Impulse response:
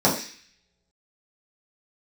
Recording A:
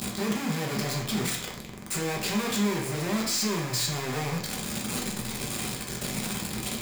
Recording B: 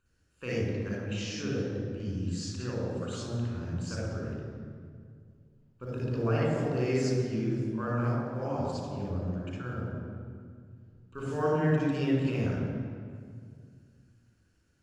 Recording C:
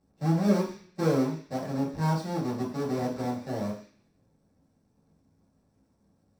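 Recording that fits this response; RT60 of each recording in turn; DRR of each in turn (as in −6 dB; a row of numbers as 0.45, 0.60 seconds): C; 0.60 s, 2.1 s, non-exponential decay; −2.5, −5.0, −7.0 decibels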